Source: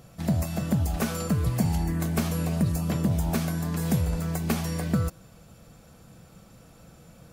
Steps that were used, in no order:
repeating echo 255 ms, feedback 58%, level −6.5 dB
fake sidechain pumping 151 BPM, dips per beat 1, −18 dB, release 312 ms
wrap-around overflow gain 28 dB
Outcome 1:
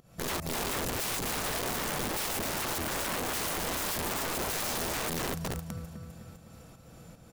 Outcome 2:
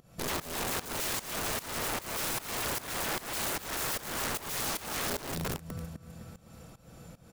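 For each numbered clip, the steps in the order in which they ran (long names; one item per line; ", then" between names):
fake sidechain pumping, then repeating echo, then wrap-around overflow
repeating echo, then wrap-around overflow, then fake sidechain pumping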